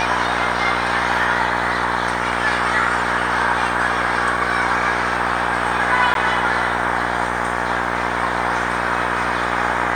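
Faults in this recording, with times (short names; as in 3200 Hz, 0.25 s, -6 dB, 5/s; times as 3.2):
buzz 60 Hz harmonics 31 -24 dBFS
6.14–6.15 gap 12 ms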